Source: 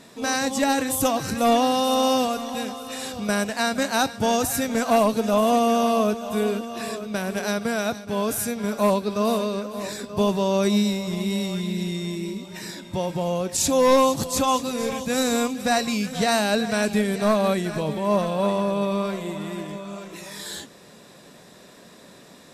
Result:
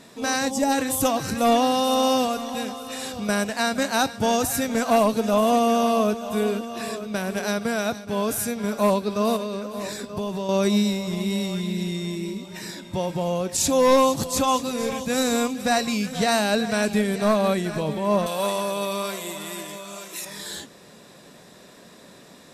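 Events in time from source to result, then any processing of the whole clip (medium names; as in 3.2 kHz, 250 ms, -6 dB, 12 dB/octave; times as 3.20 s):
0.50–0.71 s: time-frequency box 1–4.7 kHz -8 dB
9.36–10.49 s: compression, threshold -24 dBFS
18.26–20.25 s: RIAA curve recording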